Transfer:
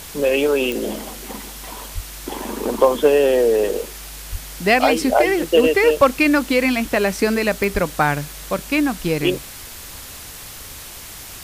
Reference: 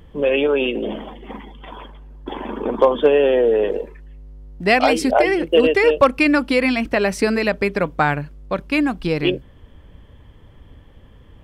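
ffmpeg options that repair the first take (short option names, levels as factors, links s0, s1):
-filter_complex "[0:a]adeclick=t=4,asplit=3[s0][s1][s2];[s0]afade=t=out:st=1.94:d=0.02[s3];[s1]highpass=f=140:w=0.5412,highpass=f=140:w=1.3066,afade=t=in:st=1.94:d=0.02,afade=t=out:st=2.06:d=0.02[s4];[s2]afade=t=in:st=2.06:d=0.02[s5];[s3][s4][s5]amix=inputs=3:normalize=0,asplit=3[s6][s7][s8];[s6]afade=t=out:st=4.31:d=0.02[s9];[s7]highpass=f=140:w=0.5412,highpass=f=140:w=1.3066,afade=t=in:st=4.31:d=0.02,afade=t=out:st=4.43:d=0.02[s10];[s8]afade=t=in:st=4.43:d=0.02[s11];[s9][s10][s11]amix=inputs=3:normalize=0,asplit=3[s12][s13][s14];[s12]afade=t=out:st=7.73:d=0.02[s15];[s13]highpass=f=140:w=0.5412,highpass=f=140:w=1.3066,afade=t=in:st=7.73:d=0.02,afade=t=out:st=7.85:d=0.02[s16];[s14]afade=t=in:st=7.85:d=0.02[s17];[s15][s16][s17]amix=inputs=3:normalize=0,afwtdn=0.018"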